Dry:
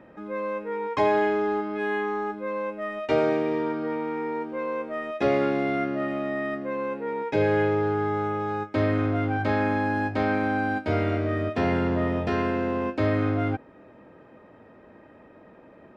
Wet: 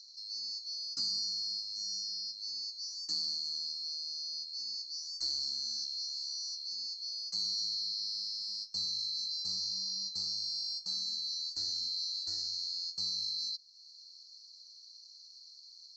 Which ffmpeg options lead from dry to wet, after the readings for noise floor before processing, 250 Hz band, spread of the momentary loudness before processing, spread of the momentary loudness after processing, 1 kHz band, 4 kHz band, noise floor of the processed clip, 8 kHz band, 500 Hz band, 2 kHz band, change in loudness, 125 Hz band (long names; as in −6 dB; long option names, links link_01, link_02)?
−52 dBFS, below −35 dB, 7 LU, 19 LU, below −40 dB, +15.0 dB, −56 dBFS, can't be measured, below −40 dB, below −40 dB, −8.5 dB, below −30 dB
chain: -filter_complex "[0:a]afftfilt=real='real(if(lt(b,736),b+184*(1-2*mod(floor(b/184),2)),b),0)':imag='imag(if(lt(b,736),b+184*(1-2*mod(floor(b/184),2)),b),0)':win_size=2048:overlap=0.75,acrossover=split=250[link_01][link_02];[link_02]acompressor=threshold=-57dB:ratio=1.5[link_03];[link_01][link_03]amix=inputs=2:normalize=0"